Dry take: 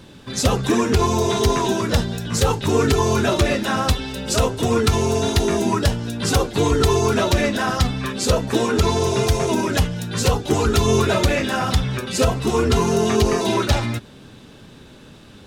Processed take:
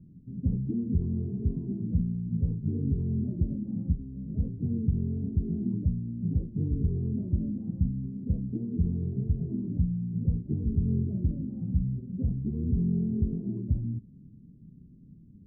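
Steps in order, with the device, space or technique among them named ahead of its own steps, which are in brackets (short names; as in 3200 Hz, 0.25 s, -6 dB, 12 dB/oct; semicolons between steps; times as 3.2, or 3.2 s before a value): the neighbour's flat through the wall (LPF 250 Hz 24 dB/oct; bell 170 Hz +7 dB 0.47 oct); gain -8 dB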